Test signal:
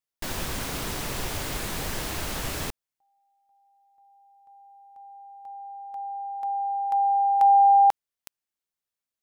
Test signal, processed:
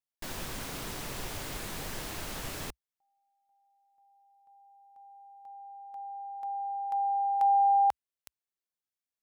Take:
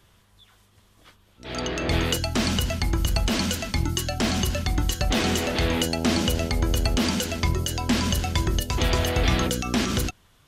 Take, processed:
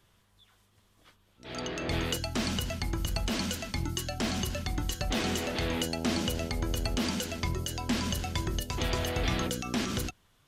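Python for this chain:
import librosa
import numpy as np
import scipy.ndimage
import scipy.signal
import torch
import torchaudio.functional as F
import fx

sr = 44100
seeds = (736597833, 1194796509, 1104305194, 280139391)

y = fx.peak_eq(x, sr, hz=64.0, db=-7.5, octaves=0.4)
y = y * 10.0 ** (-7.0 / 20.0)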